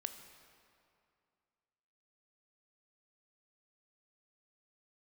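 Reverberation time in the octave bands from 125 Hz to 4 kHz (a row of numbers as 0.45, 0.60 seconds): 2.5, 2.5, 2.4, 2.4, 2.1, 1.7 seconds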